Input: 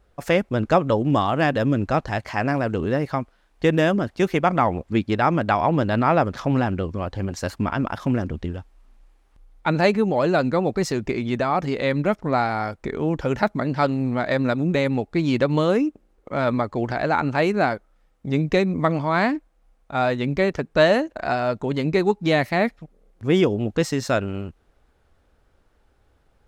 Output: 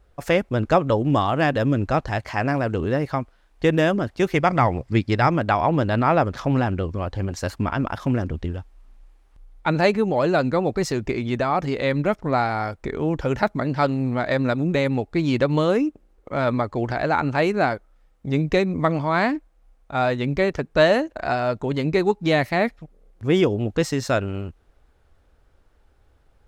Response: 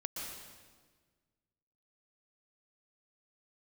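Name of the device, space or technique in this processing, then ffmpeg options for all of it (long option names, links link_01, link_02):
low shelf boost with a cut just above: -filter_complex "[0:a]lowshelf=frequency=110:gain=4.5,equalizer=frequency=200:width_type=o:width=0.67:gain=-3,asettb=1/sr,asplit=3[link_01][link_02][link_03];[link_01]atrim=end=4.344[link_04];[link_02]atrim=start=4.34:end=5.3,asetpts=PTS-STARTPTS,afade=type=in:duration=0.004:curve=qsin,afade=type=out:start_time=0.956:duration=0.004:curve=qsin,equalizer=frequency=125:width_type=o:width=0.33:gain=8,equalizer=frequency=2000:width_type=o:width=0.33:gain=5,equalizer=frequency=5000:width_type=o:width=0.33:gain=9,equalizer=frequency=8000:width_type=o:width=0.33:gain=3[link_05];[link_03]atrim=start=5.296[link_06];[link_04][link_05]acrossfade=duration=0.004:curve1=hsin:curve2=qsin[link_07];[link_07][link_06]acrossfade=duration=0.004:curve1=qsin:curve2=hsin"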